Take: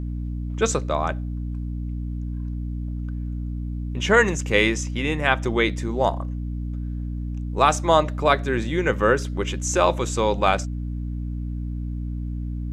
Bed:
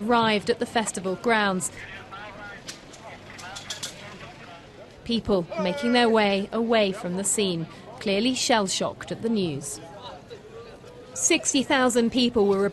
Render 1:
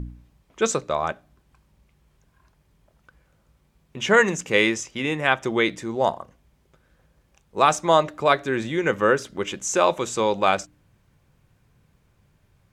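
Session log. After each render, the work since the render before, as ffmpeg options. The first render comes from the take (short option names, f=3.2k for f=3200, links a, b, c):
-af "bandreject=f=60:t=h:w=4,bandreject=f=120:t=h:w=4,bandreject=f=180:t=h:w=4,bandreject=f=240:t=h:w=4,bandreject=f=300:t=h:w=4"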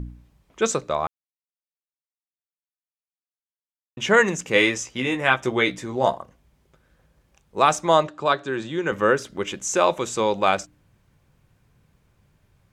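-filter_complex "[0:a]asettb=1/sr,asplit=3[a][b][c];[a]atrim=end=4.544[d];[b]atrim=start=4.54:end=6.16,asetpts=PTS-STARTPTS,afade=t=in:d=0.004:c=qsin,afade=t=out:st=1.616:d=0.004:c=qsin,asplit=2[e][f];[f]adelay=16,volume=-5.5dB[g];[e][g]amix=inputs=2:normalize=0,atrim=end_sample=71442[h];[c]atrim=start=6.156[i];[d][h]acrossfade=d=0.004:c1=hsin:c2=qsin[j];[j][i]acrossfade=d=0.004:c1=qsin:c2=hsin,asettb=1/sr,asplit=3[k][l][m];[k]atrim=end=8.074[n];[l]atrim=start=8.07:end=8.92,asetpts=PTS-STARTPTS,afade=t=in:d=0.004:c=qsin,afade=t=out:st=0.846:d=0.004:c=qsin,highpass=140,equalizer=f=240:t=q:w=4:g=-6,equalizer=f=470:t=q:w=4:g=-4,equalizer=f=680:t=q:w=4:g=-4,equalizer=f=2.1k:t=q:w=4:g=-10,equalizer=f=5.8k:t=q:w=4:g=-5,lowpass=f=7.8k:w=0.5412,lowpass=f=7.8k:w=1.3066[o];[m]atrim=start=8.916[p];[n][o]acrossfade=d=0.004:c1=hsin:c2=qsin[q];[q][p]acrossfade=d=0.004:c1=qsin:c2=hsin,asplit=3[r][s][t];[r]atrim=end=1.07,asetpts=PTS-STARTPTS,afade=t=out:st=1.066:d=0.004:c=hsin[u];[s]atrim=start=1.07:end=3.97,asetpts=PTS-STARTPTS,volume=0[v];[t]atrim=start=3.97,asetpts=PTS-STARTPTS,afade=t=in:d=0.004:c=hsin[w];[u][v][w]concat=n=3:v=0:a=1"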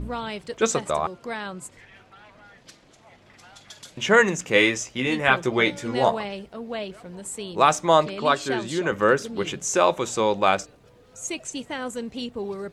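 -filter_complex "[1:a]volume=-10.5dB[a];[0:a][a]amix=inputs=2:normalize=0"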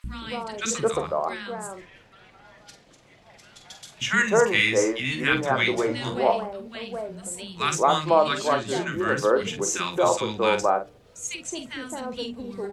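-filter_complex "[0:a]asplit=2[a][b];[b]adelay=46,volume=-9.5dB[c];[a][c]amix=inputs=2:normalize=0,acrossover=split=250|1300[d][e][f];[d]adelay=40[g];[e]adelay=220[h];[g][h][f]amix=inputs=3:normalize=0"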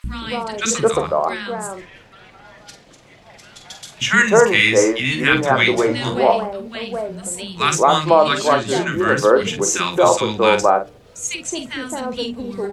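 -af "volume=7.5dB,alimiter=limit=-1dB:level=0:latency=1"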